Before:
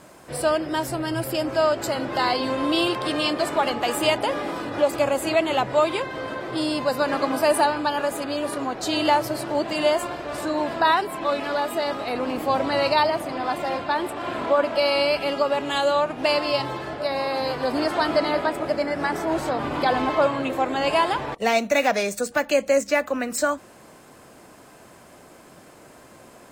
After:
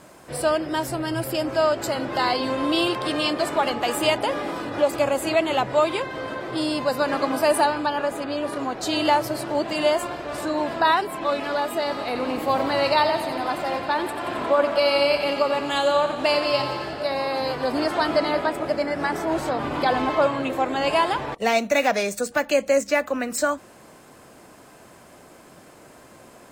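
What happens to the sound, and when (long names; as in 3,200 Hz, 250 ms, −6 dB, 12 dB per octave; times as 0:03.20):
0:07.86–0:08.56: high-shelf EQ 6,200 Hz −10 dB
0:11.80–0:17.14: feedback echo with a high-pass in the loop 89 ms, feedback 73%, level −10 dB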